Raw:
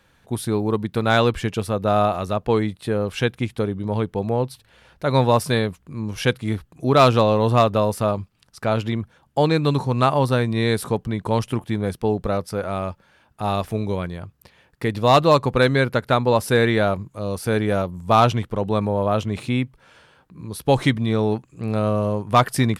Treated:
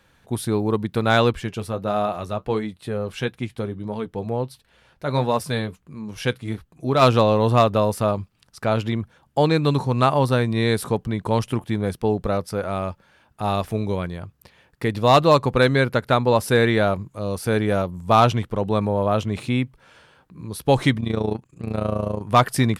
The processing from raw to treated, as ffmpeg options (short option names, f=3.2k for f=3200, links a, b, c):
-filter_complex "[0:a]asplit=3[a][b][c];[a]afade=t=out:st=1.32:d=0.02[d];[b]flanger=delay=4.4:depth=3.8:regen=-60:speed=1.5:shape=sinusoidal,afade=t=in:st=1.32:d=0.02,afade=t=out:st=7.01:d=0.02[e];[c]afade=t=in:st=7.01:d=0.02[f];[d][e][f]amix=inputs=3:normalize=0,asettb=1/sr,asplit=3[g][h][i];[g]atrim=end=21.004[j];[h]atrim=start=21:end=22.21,asetpts=PTS-STARTPTS,afade=t=in:d=0.004:c=qsin,afade=t=out:st=1.206:d=0.004:c=qsin,tremolo=f=28:d=0.788[k];[i]atrim=start=22.206[l];[j][k]acrossfade=d=0.004:c1=hsin:c2=qsin[m];[m][l]acrossfade=d=0.004:c1=qsin:c2=hsin"